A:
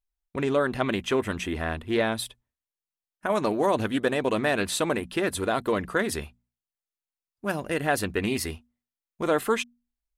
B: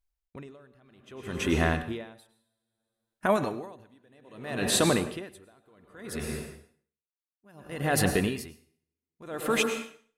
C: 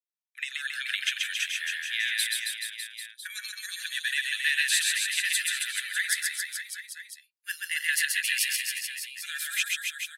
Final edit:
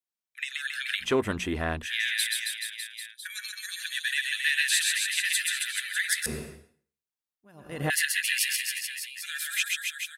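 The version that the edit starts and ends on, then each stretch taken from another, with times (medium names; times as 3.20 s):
C
1.03–1.84 s: from A, crossfade 0.06 s
6.26–7.90 s: from B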